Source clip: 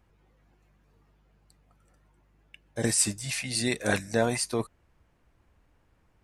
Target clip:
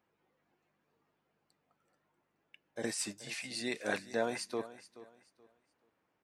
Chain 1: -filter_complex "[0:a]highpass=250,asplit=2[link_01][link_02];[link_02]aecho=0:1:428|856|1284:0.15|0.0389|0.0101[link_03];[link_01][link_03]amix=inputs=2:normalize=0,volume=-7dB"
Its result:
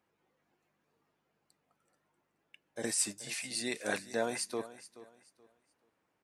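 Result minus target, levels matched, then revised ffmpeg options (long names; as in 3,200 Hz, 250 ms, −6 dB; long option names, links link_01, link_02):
8,000 Hz band +4.5 dB
-filter_complex "[0:a]highpass=250,equalizer=frequency=10000:width=0.8:gain=-9,asplit=2[link_01][link_02];[link_02]aecho=0:1:428|856|1284:0.15|0.0389|0.0101[link_03];[link_01][link_03]amix=inputs=2:normalize=0,volume=-7dB"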